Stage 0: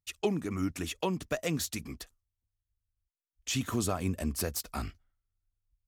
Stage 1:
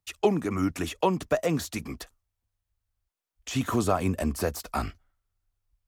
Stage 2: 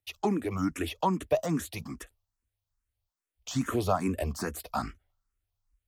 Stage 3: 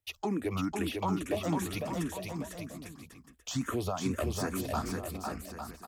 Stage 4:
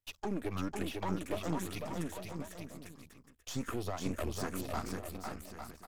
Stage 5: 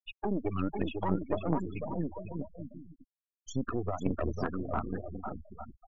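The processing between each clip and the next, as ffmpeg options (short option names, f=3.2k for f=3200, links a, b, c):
-filter_complex "[0:a]equalizer=f=830:w=0.57:g=6.5,acrossover=split=180|1400[a][b][c];[c]alimiter=level_in=6.5dB:limit=-24dB:level=0:latency=1:release=12,volume=-6.5dB[d];[a][b][d]amix=inputs=3:normalize=0,volume=3.5dB"
-filter_complex "[0:a]asplit=2[a][b];[b]afreqshift=2.4[c];[a][c]amix=inputs=2:normalize=1"
-filter_complex "[0:a]alimiter=limit=-23dB:level=0:latency=1:release=203,asplit=2[a][b];[b]aecho=0:1:500|850|1095|1266|1387:0.631|0.398|0.251|0.158|0.1[c];[a][c]amix=inputs=2:normalize=0"
-af "aeval=exprs='if(lt(val(0),0),0.251*val(0),val(0))':c=same,volume=-1.5dB"
-af "afftfilt=real='re*gte(hypot(re,im),0.0178)':imag='im*gte(hypot(re,im),0.0178)':win_size=1024:overlap=0.75,aeval=exprs='0.0944*(cos(1*acos(clip(val(0)/0.0944,-1,1)))-cos(1*PI/2))+0.0106*(cos(3*acos(clip(val(0)/0.0944,-1,1)))-cos(3*PI/2))':c=same,volume=7.5dB"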